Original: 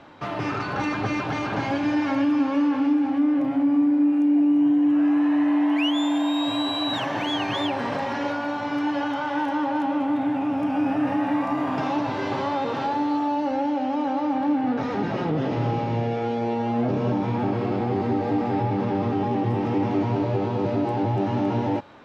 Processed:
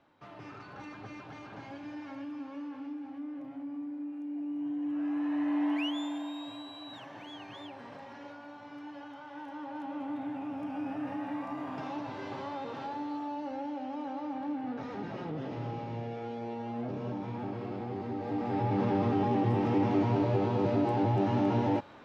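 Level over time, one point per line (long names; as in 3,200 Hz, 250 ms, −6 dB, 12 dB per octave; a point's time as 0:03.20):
0:04.21 −19.5 dB
0:05.68 −8 dB
0:06.68 −20 dB
0:09.26 −20 dB
0:10.08 −13 dB
0:18.13 −13 dB
0:18.80 −4 dB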